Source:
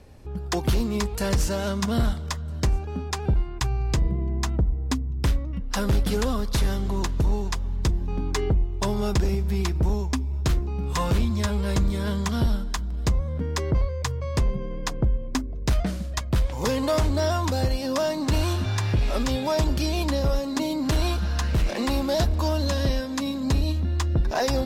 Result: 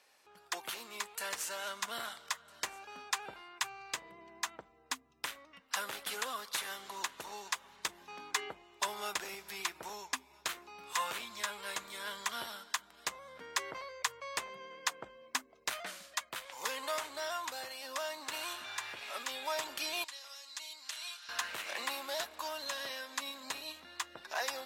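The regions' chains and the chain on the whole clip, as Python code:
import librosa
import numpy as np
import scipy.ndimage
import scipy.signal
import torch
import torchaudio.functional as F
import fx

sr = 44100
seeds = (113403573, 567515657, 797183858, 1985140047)

y = fx.chain(x, sr, fx.bessel_lowpass(hz=5400.0, order=2),
    fx.differentiator(), at=(20.04, 21.29))
y = scipy.signal.sosfilt(scipy.signal.butter(2, 1200.0, 'highpass', fs=sr, output='sos'), y)
y = fx.dynamic_eq(y, sr, hz=5100.0, q=2.0, threshold_db=-50.0, ratio=4.0, max_db=-7)
y = fx.rider(y, sr, range_db=10, speed_s=2.0)
y = F.gain(torch.from_numpy(y), -2.5).numpy()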